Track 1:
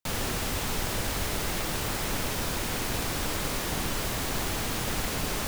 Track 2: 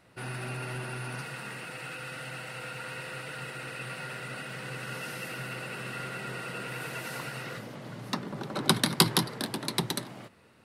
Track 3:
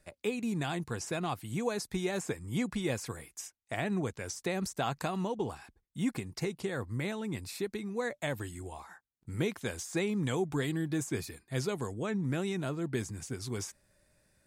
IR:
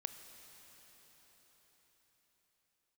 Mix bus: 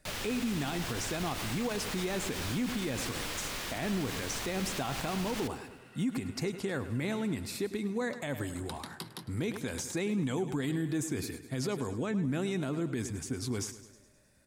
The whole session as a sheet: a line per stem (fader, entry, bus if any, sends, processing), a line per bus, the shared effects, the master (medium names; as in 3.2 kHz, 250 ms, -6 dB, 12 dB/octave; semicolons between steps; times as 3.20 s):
-10.5 dB, 0.00 s, no send, echo send -20 dB, peaking EQ 2.9 kHz +7.5 dB 2.8 oct
-19.0 dB, 0.00 s, no send, echo send -21.5 dB, none
+2.5 dB, 0.00 s, no send, echo send -15 dB, peaking EQ 260 Hz +7.5 dB 0.31 oct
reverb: none
echo: feedback delay 104 ms, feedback 55%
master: peak limiter -24.5 dBFS, peak gain reduction 11 dB